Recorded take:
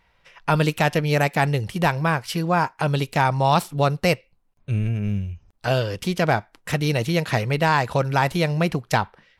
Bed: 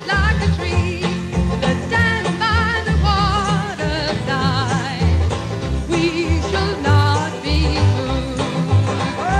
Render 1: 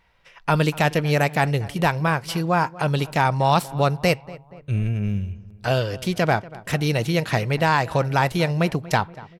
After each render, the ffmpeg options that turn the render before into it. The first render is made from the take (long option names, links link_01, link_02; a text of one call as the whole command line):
ffmpeg -i in.wav -filter_complex "[0:a]asplit=2[link_01][link_02];[link_02]adelay=238,lowpass=frequency=1900:poles=1,volume=-19dB,asplit=2[link_03][link_04];[link_04]adelay=238,lowpass=frequency=1900:poles=1,volume=0.53,asplit=2[link_05][link_06];[link_06]adelay=238,lowpass=frequency=1900:poles=1,volume=0.53,asplit=2[link_07][link_08];[link_08]adelay=238,lowpass=frequency=1900:poles=1,volume=0.53[link_09];[link_01][link_03][link_05][link_07][link_09]amix=inputs=5:normalize=0" out.wav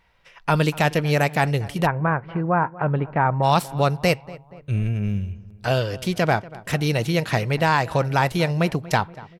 ffmpeg -i in.wav -filter_complex "[0:a]asplit=3[link_01][link_02][link_03];[link_01]afade=type=out:start_time=1.85:duration=0.02[link_04];[link_02]lowpass=frequency=1800:width=0.5412,lowpass=frequency=1800:width=1.3066,afade=type=in:start_time=1.85:duration=0.02,afade=type=out:start_time=3.42:duration=0.02[link_05];[link_03]afade=type=in:start_time=3.42:duration=0.02[link_06];[link_04][link_05][link_06]amix=inputs=3:normalize=0" out.wav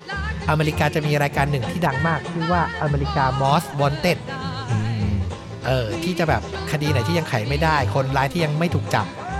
ffmpeg -i in.wav -i bed.wav -filter_complex "[1:a]volume=-10.5dB[link_01];[0:a][link_01]amix=inputs=2:normalize=0" out.wav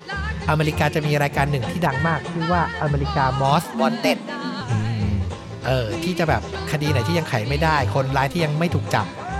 ffmpeg -i in.wav -filter_complex "[0:a]asettb=1/sr,asplit=3[link_01][link_02][link_03];[link_01]atrim=end=3.644[link_04];[link_02]atrim=start=3.64:end=4.61,asetpts=PTS-STARTPTS,afade=type=in:duration=0.004:curve=qsin,afade=type=out:start_time=0.966:duration=0.004:curve=qsin,afreqshift=86[link_05];[link_03]atrim=start=4.606[link_06];[link_04][link_05]acrossfade=duration=0.004:curve1=hsin:curve2=qsin[link_07];[link_07][link_06]acrossfade=duration=0.004:curve1=qsin:curve2=hsin" out.wav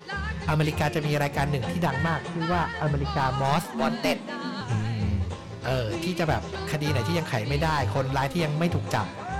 ffmpeg -i in.wav -af "aeval=exprs='clip(val(0),-1,0.158)':channel_layout=same,flanger=delay=4.8:depth=6.8:regen=86:speed=0.29:shape=sinusoidal" out.wav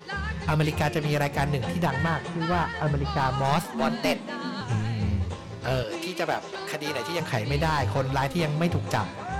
ffmpeg -i in.wav -filter_complex "[0:a]asettb=1/sr,asplit=3[link_01][link_02][link_03];[link_01]atrim=end=5.834[link_04];[link_02]atrim=start=5.83:end=7.2,asetpts=PTS-STARTPTS,afade=type=in:duration=0.004:curve=qsin,afade=type=out:start_time=1.366:duration=0.004:curve=qsin,highpass=320[link_05];[link_03]atrim=start=7.196[link_06];[link_04][link_05]acrossfade=duration=0.004:curve1=hsin:curve2=qsin[link_07];[link_07][link_06]acrossfade=duration=0.004:curve1=qsin:curve2=hsin" out.wav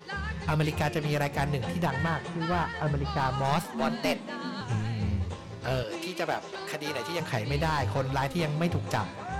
ffmpeg -i in.wav -af "volume=-3dB" out.wav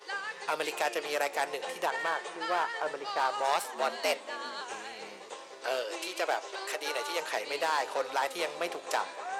ffmpeg -i in.wav -af "highpass=frequency=420:width=0.5412,highpass=frequency=420:width=1.3066,equalizer=frequency=8200:width=1.5:gain=5" out.wav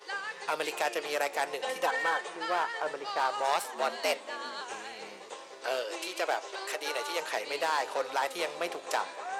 ffmpeg -i in.wav -filter_complex "[0:a]asettb=1/sr,asplit=3[link_01][link_02][link_03];[link_01]atrim=end=1.624[link_04];[link_02]atrim=start=1.62:end=2.21,asetpts=PTS-STARTPTS,afade=type=in:duration=0.004:curve=qsin,afade=type=out:start_time=0.586:duration=0.004:curve=qsin,aecho=1:1:3.9:0.79,atrim=end_sample=26019[link_05];[link_03]atrim=start=2.206[link_06];[link_04][link_05]acrossfade=duration=0.004:curve1=hsin:curve2=qsin[link_07];[link_07][link_06]acrossfade=duration=0.004:curve1=qsin:curve2=hsin" out.wav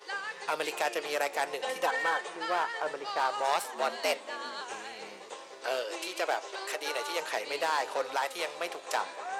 ffmpeg -i in.wav -filter_complex "[0:a]asettb=1/sr,asplit=3[link_01][link_02][link_03];[link_01]atrim=end=8.174[link_04];[link_02]atrim=start=8.17:end=8.95,asetpts=PTS-STARTPTS,afade=type=in:duration=0.004:curve=qsin,afade=type=out:start_time=0.776:duration=0.004:curve=qsin,equalizer=frequency=190:width=0.54:gain=-6.5[link_05];[link_03]atrim=start=8.946[link_06];[link_04][link_05]acrossfade=duration=0.004:curve1=hsin:curve2=qsin[link_07];[link_07][link_06]acrossfade=duration=0.004:curve1=qsin:curve2=hsin" out.wav